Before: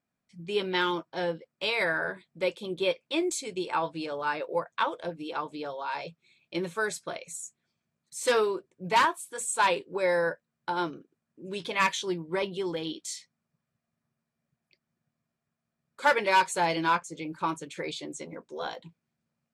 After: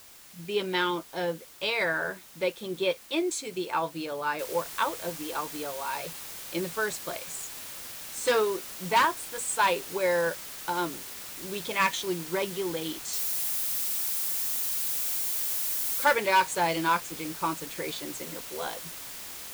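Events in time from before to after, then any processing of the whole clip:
4.39 s: noise floor step -51 dB -41 dB
13.13–16.13 s: zero-crossing glitches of -28.5 dBFS

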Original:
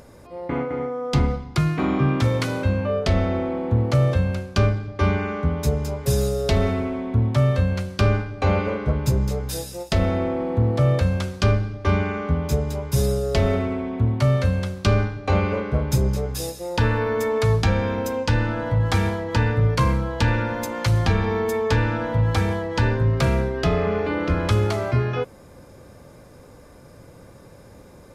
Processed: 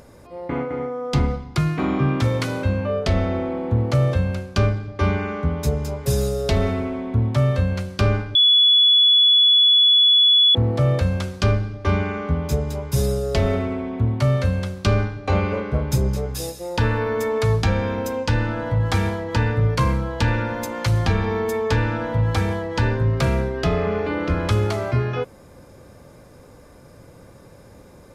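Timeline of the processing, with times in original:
8.35–10.55 s: bleep 3.41 kHz -11 dBFS

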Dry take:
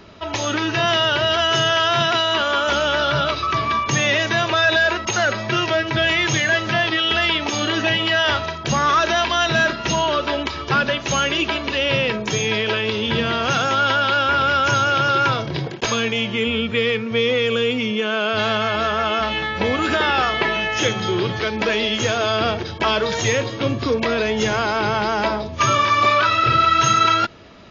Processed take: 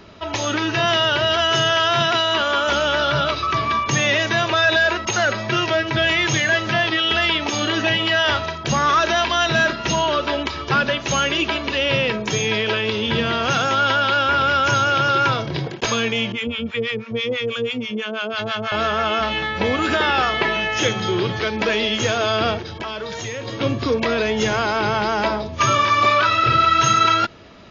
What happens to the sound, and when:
16.32–18.72 s: harmonic tremolo 6.1 Hz, depth 100%, crossover 750 Hz
22.58–23.48 s: compression 3:1, threshold -28 dBFS

